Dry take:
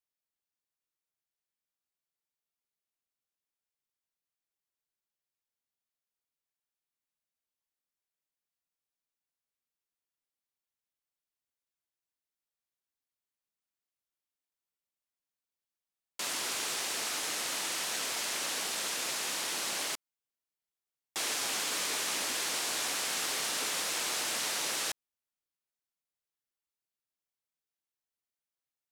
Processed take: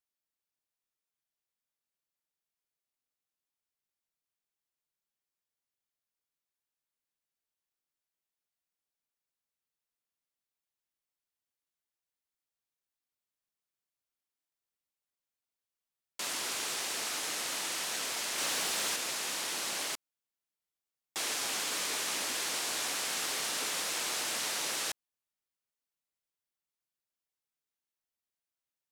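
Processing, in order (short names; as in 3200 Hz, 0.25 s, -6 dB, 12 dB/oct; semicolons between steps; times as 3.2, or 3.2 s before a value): 18.38–18.96 power-law curve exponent 0.7; gain -1 dB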